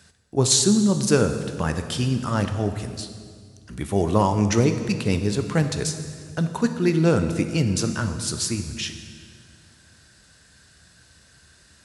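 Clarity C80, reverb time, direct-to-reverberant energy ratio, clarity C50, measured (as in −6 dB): 10.0 dB, 1.9 s, 7.0 dB, 8.5 dB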